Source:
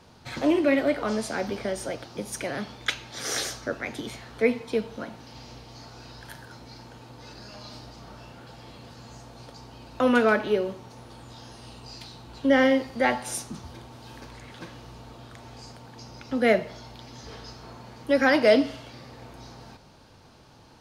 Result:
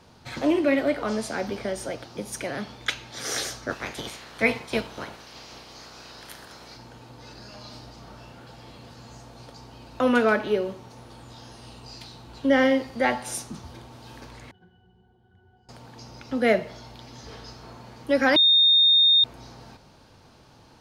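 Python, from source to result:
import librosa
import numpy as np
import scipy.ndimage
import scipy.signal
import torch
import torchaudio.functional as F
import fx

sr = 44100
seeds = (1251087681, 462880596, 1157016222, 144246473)

y = fx.spec_clip(x, sr, under_db=16, at=(3.68, 6.75), fade=0.02)
y = fx.octave_resonator(y, sr, note='F#', decay_s=0.21, at=(14.51, 15.69))
y = fx.edit(y, sr, fx.bleep(start_s=18.36, length_s=0.88, hz=3670.0, db=-14.0), tone=tone)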